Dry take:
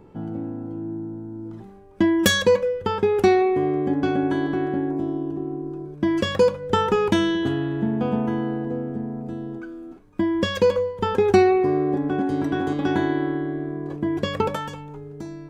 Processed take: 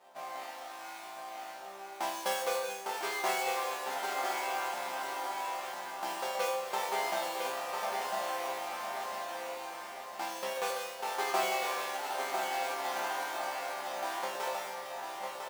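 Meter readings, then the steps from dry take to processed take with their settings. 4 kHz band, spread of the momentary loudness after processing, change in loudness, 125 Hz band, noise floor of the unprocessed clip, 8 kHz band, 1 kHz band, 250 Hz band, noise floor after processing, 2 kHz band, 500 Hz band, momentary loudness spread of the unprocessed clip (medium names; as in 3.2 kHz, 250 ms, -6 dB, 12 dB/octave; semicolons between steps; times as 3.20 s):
-8.5 dB, 11 LU, -12.5 dB, under -35 dB, -41 dBFS, -3.5 dB, -5.0 dB, -30.0 dB, -45 dBFS, -7.0 dB, -16.0 dB, 16 LU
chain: square wave that keeps the level; in parallel at +2 dB: compression, threshold -26 dBFS, peak gain reduction 17 dB; on the sum: resonant high-pass 710 Hz, resonance Q 3.8; chord resonator C3 sus4, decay 0.75 s; on a send: feedback delay 1001 ms, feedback 38%, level -6 dB; on the sum: bit-crushed delay 429 ms, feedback 80%, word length 9-bit, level -14 dB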